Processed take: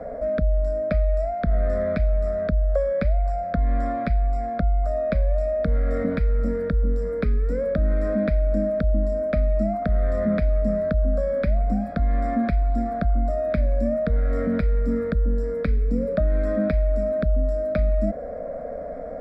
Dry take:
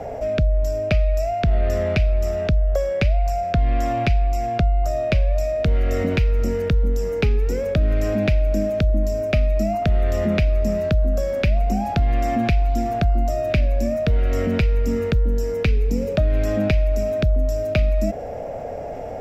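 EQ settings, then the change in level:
moving average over 7 samples
phaser with its sweep stopped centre 560 Hz, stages 8
0.0 dB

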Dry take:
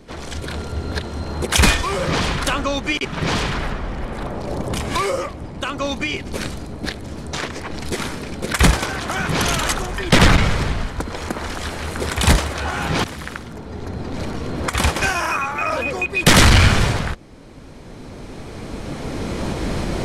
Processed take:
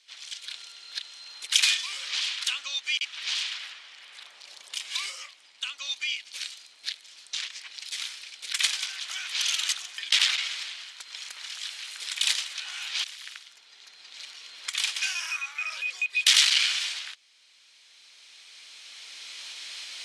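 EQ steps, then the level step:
four-pole ladder band-pass 3,900 Hz, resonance 30%
high-shelf EQ 4,200 Hz +8.5 dB
+4.5 dB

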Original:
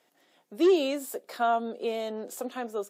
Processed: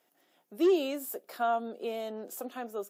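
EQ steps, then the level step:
graphic EQ with 10 bands 125 Hz −12 dB, 250 Hz −6 dB, 500 Hz −8 dB, 1,000 Hz −7 dB, 2,000 Hz −8 dB, 4,000 Hz −9 dB, 8,000 Hz −9 dB
+6.0 dB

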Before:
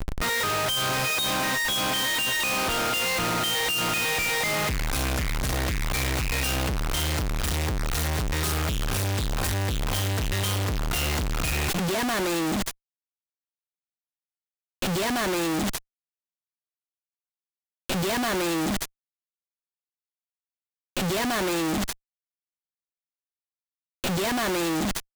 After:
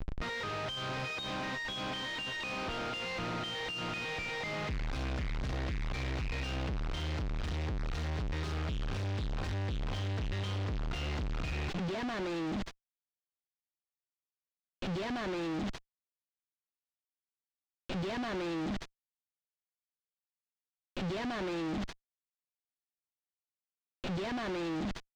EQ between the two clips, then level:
high-frequency loss of the air 120 metres
parametric band 1,200 Hz −3.5 dB 2.6 octaves
parametric band 9,000 Hz −7.5 dB 1.2 octaves
−7.5 dB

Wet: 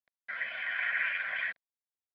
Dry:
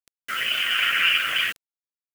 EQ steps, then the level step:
resonant band-pass 1,300 Hz, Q 0.59
high-frequency loss of the air 440 metres
phaser with its sweep stopped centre 1,900 Hz, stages 8
0.0 dB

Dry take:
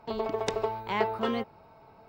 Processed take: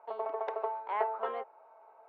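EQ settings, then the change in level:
high-pass filter 540 Hz 24 dB per octave
low-pass filter 1,300 Hz 12 dB per octave
high-frequency loss of the air 110 metres
0.0 dB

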